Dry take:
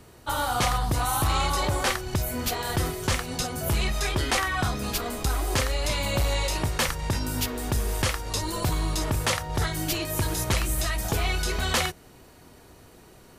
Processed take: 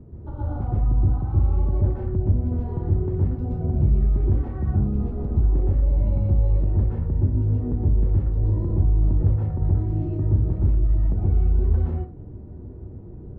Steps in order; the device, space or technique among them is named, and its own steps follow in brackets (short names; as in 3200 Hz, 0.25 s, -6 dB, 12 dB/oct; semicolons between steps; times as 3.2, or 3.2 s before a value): television next door (compressor, threshold -33 dBFS, peak gain reduction 12 dB; LPF 270 Hz 12 dB/oct; reverb RT60 0.35 s, pre-delay 0.117 s, DRR -4.5 dB); gain +9 dB